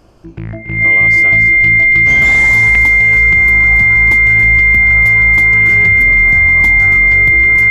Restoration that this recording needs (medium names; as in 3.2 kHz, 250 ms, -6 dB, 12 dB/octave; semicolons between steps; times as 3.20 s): band-stop 2.1 kHz, Q 30; interpolate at 2.75 s, 3.3 ms; inverse comb 280 ms -9 dB